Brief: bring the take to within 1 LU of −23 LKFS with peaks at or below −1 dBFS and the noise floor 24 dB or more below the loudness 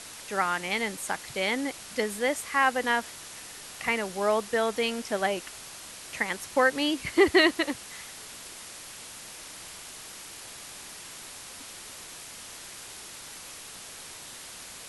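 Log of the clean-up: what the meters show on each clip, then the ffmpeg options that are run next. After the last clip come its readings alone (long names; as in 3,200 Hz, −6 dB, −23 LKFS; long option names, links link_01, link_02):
background noise floor −44 dBFS; target noise floor −51 dBFS; integrated loudness −27.0 LKFS; sample peak −9.0 dBFS; target loudness −23.0 LKFS
→ -af "afftdn=noise_reduction=7:noise_floor=-44"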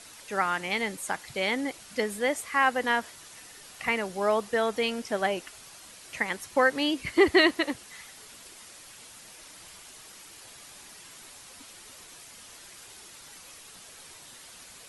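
background noise floor −49 dBFS; target noise floor −51 dBFS
→ -af "afftdn=noise_reduction=6:noise_floor=-49"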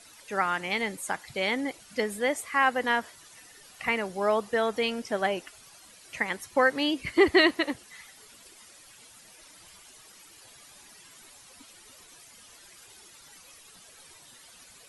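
background noise floor −53 dBFS; integrated loudness −27.0 LKFS; sample peak −9.0 dBFS; target loudness −23.0 LKFS
→ -af "volume=4dB"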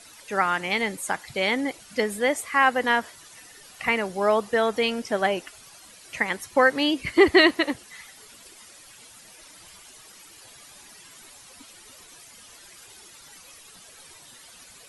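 integrated loudness −23.0 LKFS; sample peak −5.0 dBFS; background noise floor −49 dBFS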